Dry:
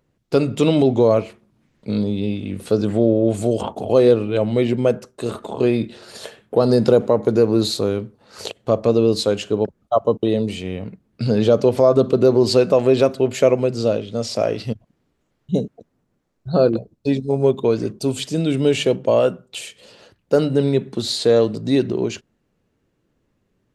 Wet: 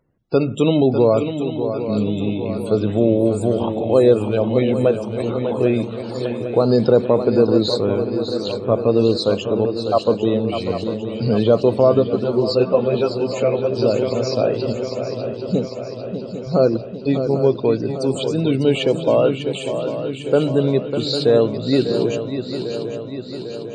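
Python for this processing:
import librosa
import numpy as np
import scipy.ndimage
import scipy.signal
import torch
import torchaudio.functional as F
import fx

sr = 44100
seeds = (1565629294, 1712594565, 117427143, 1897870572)

y = fx.spec_topn(x, sr, count=64)
y = fx.echo_swing(y, sr, ms=799, ratio=3, feedback_pct=60, wet_db=-9)
y = fx.ensemble(y, sr, at=(11.99, 13.75), fade=0.02)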